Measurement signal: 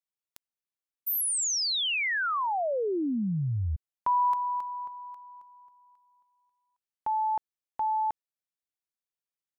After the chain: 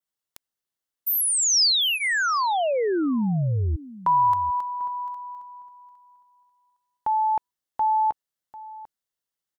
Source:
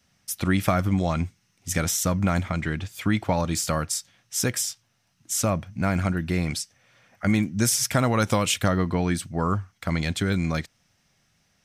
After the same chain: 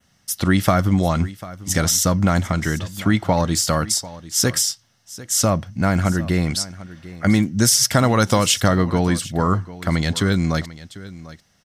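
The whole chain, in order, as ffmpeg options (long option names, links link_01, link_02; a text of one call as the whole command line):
ffmpeg -i in.wav -af "bandreject=frequency=2400:width=7.2,adynamicequalizer=threshold=0.00891:dfrequency=5000:dqfactor=2.1:tfrequency=5000:tqfactor=2.1:attack=5:release=100:ratio=0.375:range=2.5:mode=boostabove:tftype=bell,aecho=1:1:745:0.133,volume=5.5dB" out.wav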